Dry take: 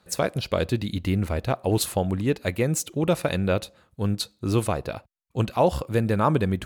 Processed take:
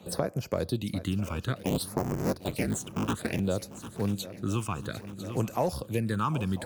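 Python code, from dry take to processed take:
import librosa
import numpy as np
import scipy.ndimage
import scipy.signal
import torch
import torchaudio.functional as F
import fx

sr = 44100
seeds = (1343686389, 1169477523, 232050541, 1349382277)

p1 = fx.cycle_switch(x, sr, every=3, mode='inverted', at=(1.56, 3.4))
p2 = scipy.signal.sosfilt(scipy.signal.butter(2, 95.0, 'highpass', fs=sr, output='sos'), p1)
p3 = fx.high_shelf(p2, sr, hz=10000.0, db=7.0)
p4 = np.clip(p3, -10.0 ** (-18.5 / 20.0), 10.0 ** (-18.5 / 20.0))
p5 = p3 + (p4 * librosa.db_to_amplitude(-9.0))
p6 = fx.phaser_stages(p5, sr, stages=8, low_hz=550.0, high_hz=3700.0, hz=0.59, feedback_pct=25)
p7 = p6 + fx.echo_swing(p6, sr, ms=996, ratio=3, feedback_pct=40, wet_db=-18.5, dry=0)
p8 = fx.band_squash(p7, sr, depth_pct=70)
y = p8 * librosa.db_to_amplitude(-7.5)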